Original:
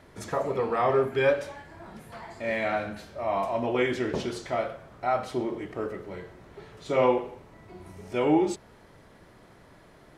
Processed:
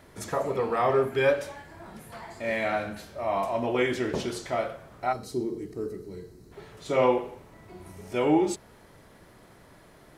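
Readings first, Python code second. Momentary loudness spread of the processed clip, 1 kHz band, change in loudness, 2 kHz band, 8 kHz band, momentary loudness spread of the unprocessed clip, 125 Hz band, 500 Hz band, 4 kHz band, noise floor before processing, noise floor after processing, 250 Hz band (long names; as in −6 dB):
21 LU, 0.0 dB, 0.0 dB, +0.5 dB, +4.0 dB, 20 LU, 0.0 dB, 0.0 dB, +1.0 dB, −54 dBFS, −54 dBFS, 0.0 dB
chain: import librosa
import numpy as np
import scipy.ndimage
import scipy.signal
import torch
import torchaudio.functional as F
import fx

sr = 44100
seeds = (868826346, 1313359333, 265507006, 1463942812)

y = fx.spec_box(x, sr, start_s=5.13, length_s=1.39, low_hz=480.0, high_hz=3800.0, gain_db=-14)
y = fx.high_shelf(y, sr, hz=9100.0, db=11.0)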